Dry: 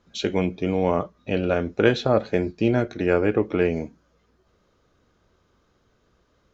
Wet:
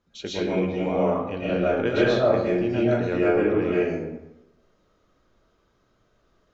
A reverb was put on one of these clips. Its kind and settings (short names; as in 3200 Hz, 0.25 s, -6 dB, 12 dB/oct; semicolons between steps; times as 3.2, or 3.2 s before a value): digital reverb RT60 0.92 s, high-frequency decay 0.6×, pre-delay 90 ms, DRR -8.5 dB; gain -9.5 dB